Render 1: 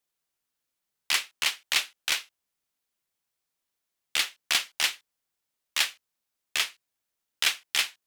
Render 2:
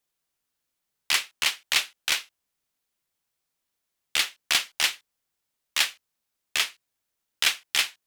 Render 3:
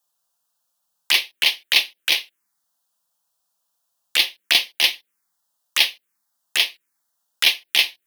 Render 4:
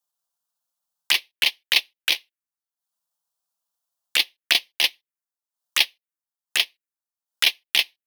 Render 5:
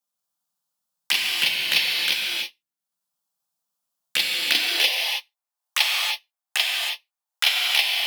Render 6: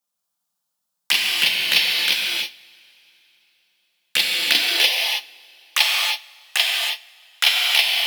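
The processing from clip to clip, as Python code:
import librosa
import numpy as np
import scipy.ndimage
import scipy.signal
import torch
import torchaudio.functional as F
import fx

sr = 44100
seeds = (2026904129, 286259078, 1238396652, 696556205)

y1 = fx.low_shelf(x, sr, hz=180.0, db=3.0)
y1 = y1 * 10.0 ** (2.0 / 20.0)
y2 = scipy.signal.sosfilt(scipy.signal.butter(2, 250.0, 'highpass', fs=sr, output='sos'), y1)
y2 = y2 + 0.35 * np.pad(y2, (int(5.8 * sr / 1000.0), 0))[:len(y2)]
y2 = fx.env_phaser(y2, sr, low_hz=370.0, high_hz=1400.0, full_db=-25.5)
y2 = y2 * 10.0 ** (8.0 / 20.0)
y3 = fx.transient(y2, sr, attack_db=9, sustain_db=-11)
y3 = y3 * 10.0 ** (-9.0 / 20.0)
y4 = fx.rev_gated(y3, sr, seeds[0], gate_ms=350, shape='flat', drr_db=-2.5)
y4 = fx.filter_sweep_highpass(y4, sr, from_hz=150.0, to_hz=760.0, start_s=4.34, end_s=5.1, q=2.5)
y4 = y4 * 10.0 ** (-3.0 / 20.0)
y5 = fx.rev_double_slope(y4, sr, seeds[1], early_s=0.27, late_s=3.7, knee_db=-22, drr_db=12.5)
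y5 = y5 * 10.0 ** (3.0 / 20.0)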